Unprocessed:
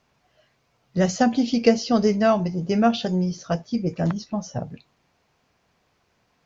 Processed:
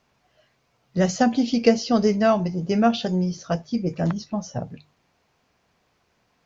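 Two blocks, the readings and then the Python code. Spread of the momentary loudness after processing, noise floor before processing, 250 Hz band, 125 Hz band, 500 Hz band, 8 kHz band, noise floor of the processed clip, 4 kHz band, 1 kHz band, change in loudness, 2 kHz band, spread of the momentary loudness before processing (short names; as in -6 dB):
11 LU, -68 dBFS, 0.0 dB, 0.0 dB, 0.0 dB, n/a, -68 dBFS, 0.0 dB, 0.0 dB, 0.0 dB, 0.0 dB, 11 LU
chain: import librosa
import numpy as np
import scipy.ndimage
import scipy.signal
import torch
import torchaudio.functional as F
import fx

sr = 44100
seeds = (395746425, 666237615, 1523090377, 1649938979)

y = fx.hum_notches(x, sr, base_hz=50, count=3)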